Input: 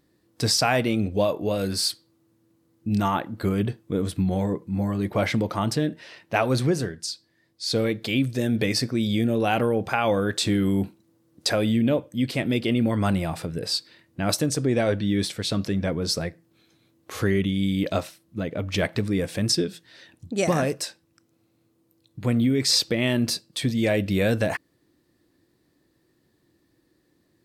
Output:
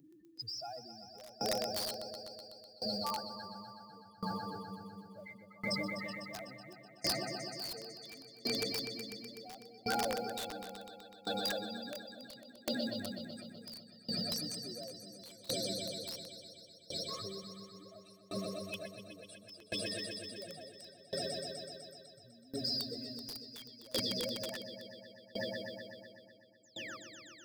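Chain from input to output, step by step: spectral contrast raised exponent 3.9; HPF 80 Hz 6 dB/oct; pre-emphasis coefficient 0.97; de-esser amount 85%; limiter -35 dBFS, peak gain reduction 10 dB; upward compressor, threshold -49 dBFS; painted sound fall, 26.63–26.97, 1100–7900 Hz -54 dBFS; swelling echo 0.125 s, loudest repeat 5, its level -6 dB; modulation noise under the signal 29 dB; wrapped overs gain 32.5 dB; dB-ramp tremolo decaying 0.71 Hz, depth 24 dB; gain +9.5 dB

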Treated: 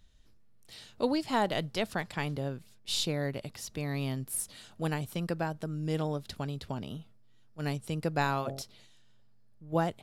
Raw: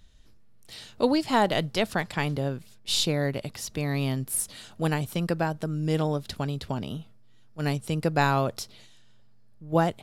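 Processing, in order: 8.22–8.62 de-hum 45.12 Hz, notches 18; gain -6 dB

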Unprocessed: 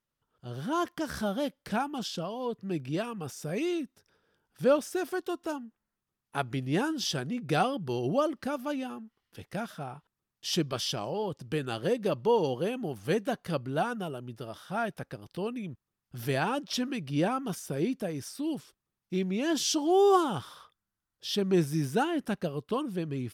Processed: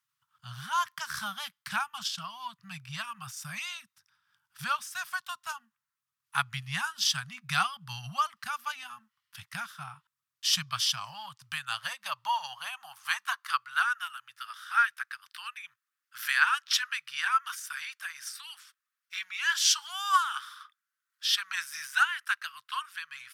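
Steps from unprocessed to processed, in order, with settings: transient shaper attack +3 dB, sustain -5 dB; elliptic band-stop 120–1100 Hz, stop band 60 dB; high-pass sweep 230 Hz -> 1500 Hz, 10.79–13.9; gain +5.5 dB

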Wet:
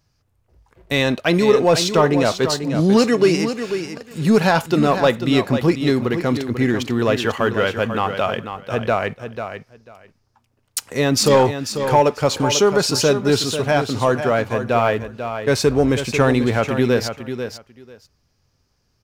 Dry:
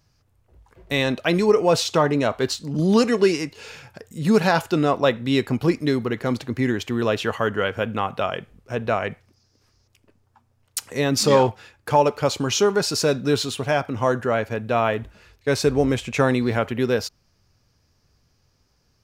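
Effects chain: sample leveller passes 1; feedback echo 0.493 s, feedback 16%, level -9 dB

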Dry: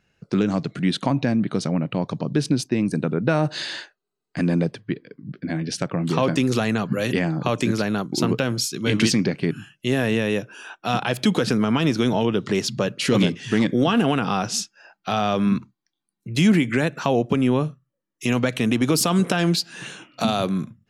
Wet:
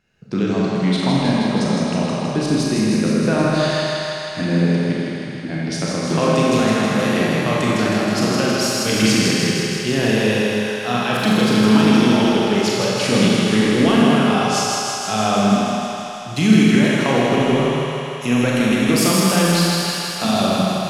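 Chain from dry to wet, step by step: 13.38–13.97 resonant high shelf 8000 Hz +7.5 dB, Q 1.5; thinning echo 0.159 s, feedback 78%, high-pass 320 Hz, level -4 dB; Schroeder reverb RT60 1.9 s, combs from 29 ms, DRR -3.5 dB; gain -1.5 dB

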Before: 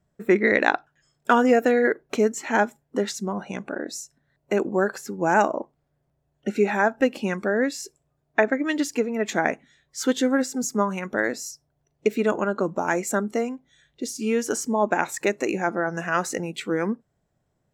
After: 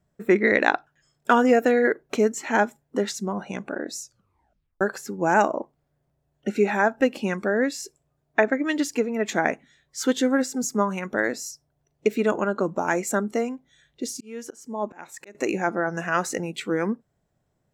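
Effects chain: 4.01 tape stop 0.80 s; 14.09–15.35 auto swell 0.649 s

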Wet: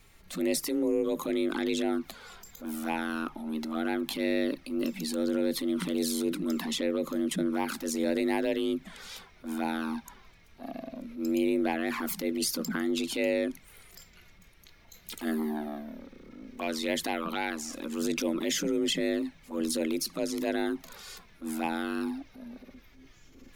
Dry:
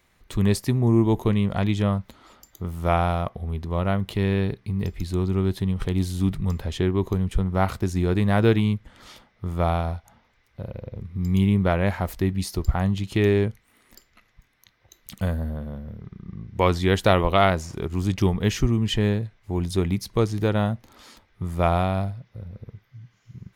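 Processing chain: tilt +2 dB/oct; compressor 12:1, threshold -26 dBFS, peak gain reduction 13.5 dB; envelope flanger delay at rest 4.3 ms, full sweep at -24 dBFS; transient shaper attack -9 dB, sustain +3 dB; frequency shift +150 Hz; added noise brown -61 dBFS; gain +4 dB

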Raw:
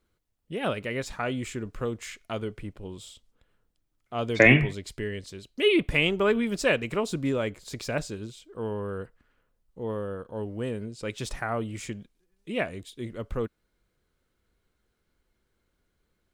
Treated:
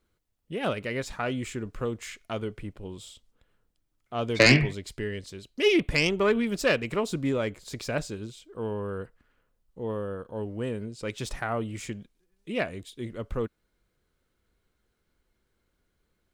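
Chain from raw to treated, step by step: self-modulated delay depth 0.15 ms

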